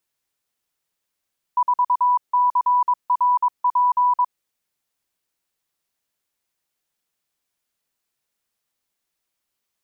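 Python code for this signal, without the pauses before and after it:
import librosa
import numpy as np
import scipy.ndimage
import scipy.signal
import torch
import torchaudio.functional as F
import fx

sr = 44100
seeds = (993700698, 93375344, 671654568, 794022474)

y = fx.morse(sr, text='4CRP', wpm=22, hz=987.0, level_db=-14.0)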